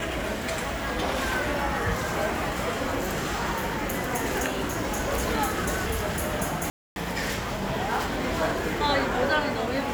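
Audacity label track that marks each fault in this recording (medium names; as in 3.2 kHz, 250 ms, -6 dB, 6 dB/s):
6.700000	6.960000	dropout 261 ms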